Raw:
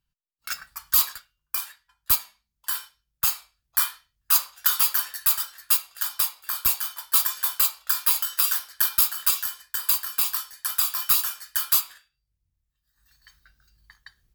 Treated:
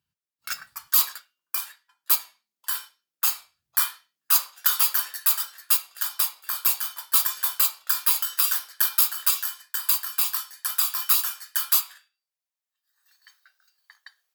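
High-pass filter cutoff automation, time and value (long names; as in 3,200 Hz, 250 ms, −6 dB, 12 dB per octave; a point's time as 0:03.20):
high-pass filter 24 dB per octave
82 Hz
from 0:00.88 260 Hz
from 0:03.29 90 Hz
from 0:03.89 240 Hz
from 0:06.67 86 Hz
from 0:07.84 280 Hz
from 0:09.43 590 Hz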